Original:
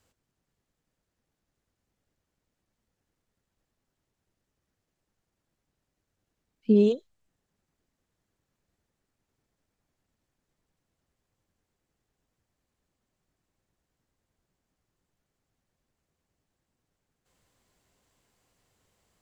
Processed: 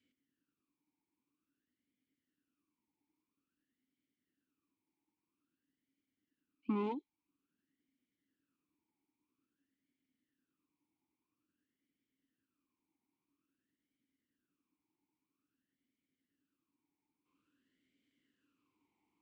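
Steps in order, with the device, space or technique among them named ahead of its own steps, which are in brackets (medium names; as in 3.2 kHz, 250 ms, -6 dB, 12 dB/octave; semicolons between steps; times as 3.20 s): talk box (valve stage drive 27 dB, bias 0.7; talking filter i-u 0.5 Hz); trim +9.5 dB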